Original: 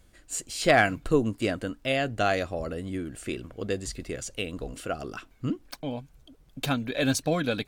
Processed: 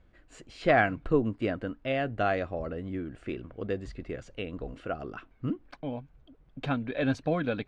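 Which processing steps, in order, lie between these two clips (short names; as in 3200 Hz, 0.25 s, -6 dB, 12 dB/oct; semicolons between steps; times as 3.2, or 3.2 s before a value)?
LPF 2200 Hz 12 dB/oct; gain -2 dB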